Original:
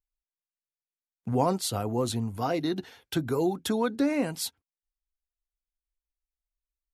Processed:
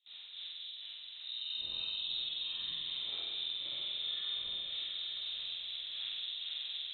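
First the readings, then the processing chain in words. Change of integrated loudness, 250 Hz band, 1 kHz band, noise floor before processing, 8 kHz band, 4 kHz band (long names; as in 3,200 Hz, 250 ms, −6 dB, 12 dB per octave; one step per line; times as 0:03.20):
−8.5 dB, below −35 dB, −28.5 dB, below −85 dBFS, below −40 dB, +7.5 dB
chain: spectrum smeared in time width 114 ms
wind on the microphone 520 Hz −42 dBFS
time-frequency box erased 0:00.44–0:01.97, 340–750 Hz
noise gate with hold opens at −42 dBFS
low-shelf EQ 160 Hz −4 dB
downward compressor 6 to 1, threshold −43 dBFS, peak gain reduction 16.5 dB
echo whose low-pass opens from repeat to repeat 231 ms, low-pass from 750 Hz, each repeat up 1 octave, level 0 dB
spring reverb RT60 1.4 s, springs 47 ms, chirp 25 ms, DRR −7.5 dB
voice inversion scrambler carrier 3,900 Hz
level −6.5 dB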